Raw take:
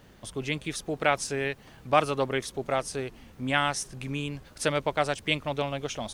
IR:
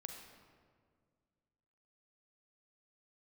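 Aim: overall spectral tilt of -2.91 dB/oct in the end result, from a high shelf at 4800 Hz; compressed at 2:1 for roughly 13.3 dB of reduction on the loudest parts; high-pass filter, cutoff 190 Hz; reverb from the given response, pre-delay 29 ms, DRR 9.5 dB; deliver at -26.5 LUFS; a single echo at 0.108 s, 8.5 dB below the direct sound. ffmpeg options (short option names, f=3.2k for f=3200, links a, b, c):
-filter_complex "[0:a]highpass=190,highshelf=f=4.8k:g=4,acompressor=threshold=-41dB:ratio=2,aecho=1:1:108:0.376,asplit=2[a][b];[1:a]atrim=start_sample=2205,adelay=29[c];[b][c]afir=irnorm=-1:irlink=0,volume=-6dB[d];[a][d]amix=inputs=2:normalize=0,volume=11.5dB"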